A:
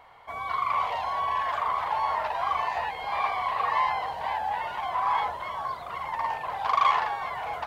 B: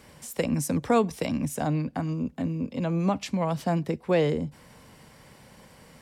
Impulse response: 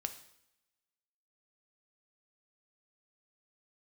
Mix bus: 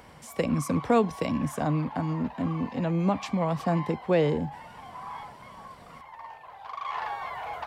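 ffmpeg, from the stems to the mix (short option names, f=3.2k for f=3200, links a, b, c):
-filter_complex "[0:a]acompressor=mode=upward:threshold=-32dB:ratio=2.5,volume=-3dB,afade=t=in:st=6.87:d=0.23:silence=0.281838[a];[1:a]highshelf=f=5.3k:g=-8.5,volume=0dB[b];[a][b]amix=inputs=2:normalize=0"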